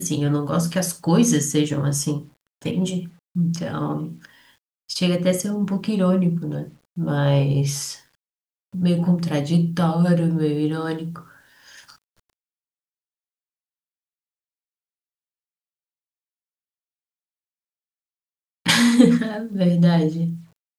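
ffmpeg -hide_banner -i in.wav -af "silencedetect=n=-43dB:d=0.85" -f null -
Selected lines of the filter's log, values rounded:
silence_start: 11.95
silence_end: 18.66 | silence_duration: 6.70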